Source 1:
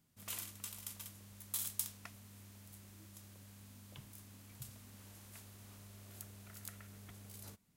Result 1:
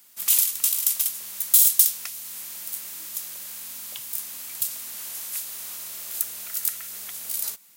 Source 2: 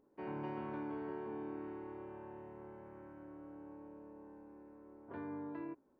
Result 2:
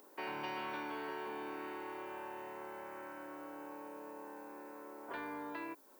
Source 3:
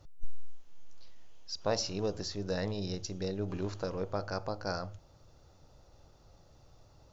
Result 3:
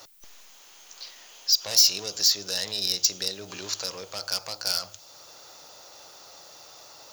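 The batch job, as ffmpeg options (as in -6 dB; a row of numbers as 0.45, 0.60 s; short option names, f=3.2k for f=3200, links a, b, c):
-filter_complex "[0:a]asplit=2[a][b];[b]highpass=f=720:p=1,volume=24dB,asoftclip=type=tanh:threshold=-11.5dB[c];[a][c]amix=inputs=2:normalize=0,lowpass=f=4.1k:p=1,volume=-6dB,aemphasis=mode=production:type=riaa,acrossover=split=150|3000[d][e][f];[e]acompressor=threshold=-49dB:ratio=2[g];[d][g][f]amix=inputs=3:normalize=0"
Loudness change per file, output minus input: +24.5, +2.0, +12.5 LU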